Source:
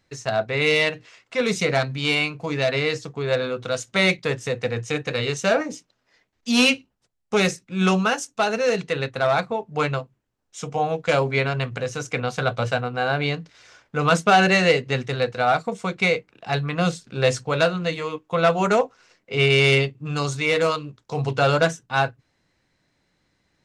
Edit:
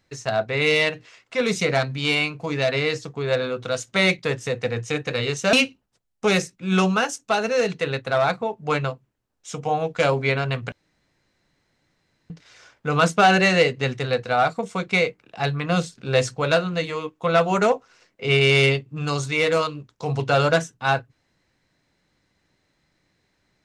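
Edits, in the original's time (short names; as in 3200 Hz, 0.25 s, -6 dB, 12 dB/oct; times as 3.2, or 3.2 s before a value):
5.53–6.62 cut
11.81–13.39 room tone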